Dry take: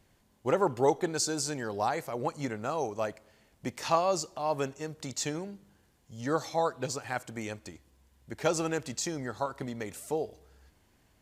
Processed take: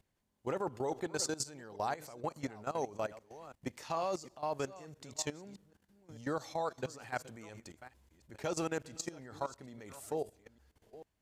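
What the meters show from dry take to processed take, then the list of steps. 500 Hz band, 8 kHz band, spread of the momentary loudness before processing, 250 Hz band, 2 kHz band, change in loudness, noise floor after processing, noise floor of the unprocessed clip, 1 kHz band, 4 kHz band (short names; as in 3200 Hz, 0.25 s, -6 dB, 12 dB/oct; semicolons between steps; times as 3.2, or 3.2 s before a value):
-7.5 dB, -6.5 dB, 13 LU, -7.5 dB, -6.5 dB, -7.0 dB, -81 dBFS, -67 dBFS, -7.5 dB, -7.0 dB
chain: reverse delay 0.441 s, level -14 dB; level quantiser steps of 16 dB; gain -2 dB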